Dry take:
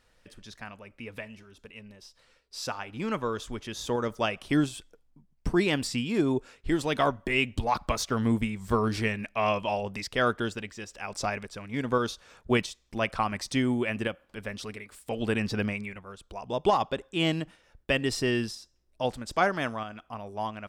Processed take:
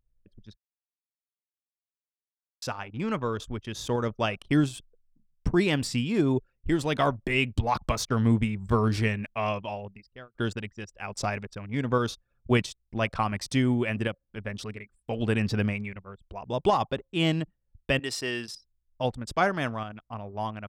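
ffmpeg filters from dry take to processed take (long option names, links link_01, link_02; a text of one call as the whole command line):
ffmpeg -i in.wav -filter_complex "[0:a]asettb=1/sr,asplit=3[link_01][link_02][link_03];[link_01]atrim=end=17.994[link_04];[link_02]atrim=start=17.99:end=18.55,asetpts=PTS-STARTPTS,afade=type=in:duration=0.004:curve=qsin,afade=type=out:start_time=0.556:duration=0.004:curve=qsin,highpass=frequency=730:poles=1[link_05];[link_03]atrim=start=18.546[link_06];[link_04][link_05]acrossfade=duration=0.004:curve1=hsin:curve2=qsin[link_07];[link_07][link_06]acrossfade=duration=0.004:curve1=qsin:curve2=hsin,asplit=4[link_08][link_09][link_10][link_11];[link_08]atrim=end=0.56,asetpts=PTS-STARTPTS,afade=type=out:start_time=0.556:duration=0.004:curve=hsin[link_12];[link_09]atrim=start=0.56:end=2.62,asetpts=PTS-STARTPTS,volume=0[link_13];[link_10]atrim=start=2.62:end=10.35,asetpts=PTS-STARTPTS,afade=type=in:duration=0.004:curve=hsin,afade=type=out:start_time=6.47:duration=1.26[link_14];[link_11]atrim=start=10.35,asetpts=PTS-STARTPTS,afade=type=in:duration=0.004:curve=hsin[link_15];[link_12][link_13][link_14][link_15]concat=n=4:v=0:a=1,anlmdn=0.158,equalizer=frequency=110:width=1:gain=6.5" out.wav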